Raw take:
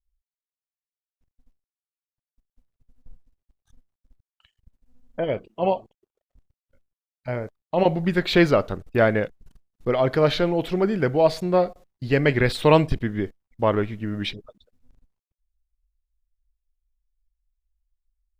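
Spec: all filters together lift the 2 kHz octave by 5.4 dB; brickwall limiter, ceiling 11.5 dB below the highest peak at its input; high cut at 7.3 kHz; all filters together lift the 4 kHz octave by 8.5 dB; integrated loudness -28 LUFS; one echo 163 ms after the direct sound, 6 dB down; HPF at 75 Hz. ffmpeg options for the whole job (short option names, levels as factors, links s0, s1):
-af "highpass=75,lowpass=7300,equalizer=f=2000:t=o:g=4.5,equalizer=f=4000:t=o:g=9,alimiter=limit=0.251:level=0:latency=1,aecho=1:1:163:0.501,volume=0.631"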